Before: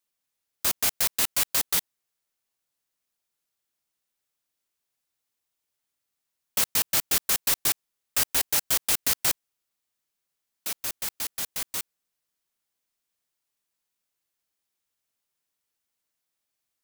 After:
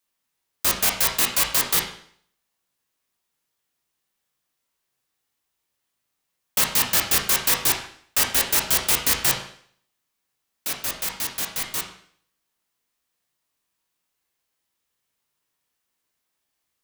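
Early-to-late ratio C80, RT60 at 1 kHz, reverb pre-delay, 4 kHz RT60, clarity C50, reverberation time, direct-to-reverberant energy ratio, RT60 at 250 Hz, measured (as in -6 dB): 10.0 dB, 0.55 s, 16 ms, 0.55 s, 6.5 dB, 0.55 s, -0.5 dB, 0.55 s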